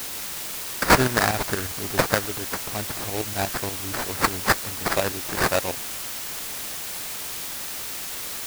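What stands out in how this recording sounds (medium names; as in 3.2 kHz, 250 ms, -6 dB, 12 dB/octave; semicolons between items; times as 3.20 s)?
aliases and images of a low sample rate 3.2 kHz, jitter 20%; tremolo saw up 8.4 Hz, depth 70%; a quantiser's noise floor 6-bit, dither triangular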